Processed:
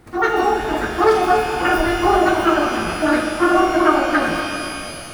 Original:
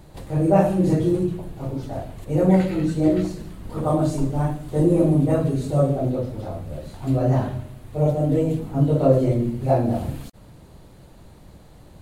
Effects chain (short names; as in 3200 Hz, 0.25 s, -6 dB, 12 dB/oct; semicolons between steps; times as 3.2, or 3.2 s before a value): AGC gain up to 10 dB; speed mistake 33 rpm record played at 78 rpm; shimmer reverb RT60 2.7 s, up +12 st, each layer -8 dB, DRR 3 dB; gain -3.5 dB